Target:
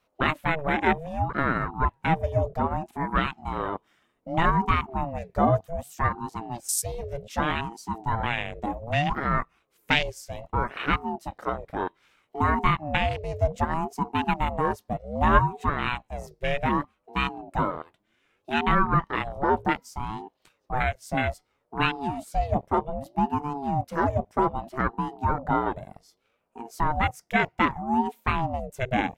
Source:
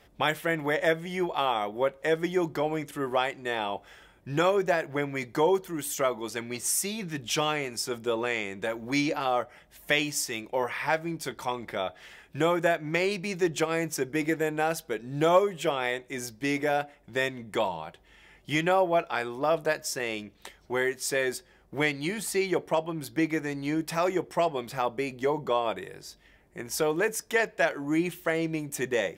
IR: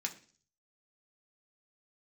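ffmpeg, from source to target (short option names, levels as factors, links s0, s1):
-af "afwtdn=0.0316,aeval=exprs='val(0)*sin(2*PI*420*n/s+420*0.4/0.64*sin(2*PI*0.64*n/s))':c=same,volume=1.88"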